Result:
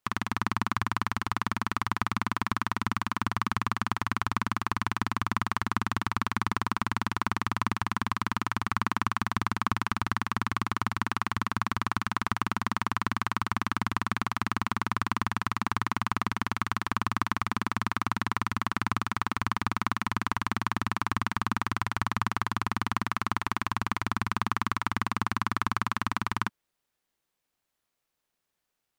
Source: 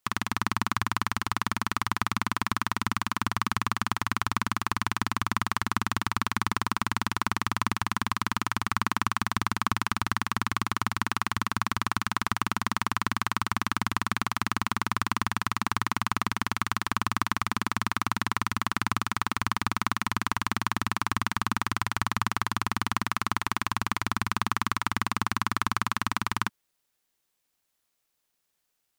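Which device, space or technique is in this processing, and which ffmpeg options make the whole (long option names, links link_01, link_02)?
behind a face mask: -af "highshelf=frequency=3300:gain=-7.5"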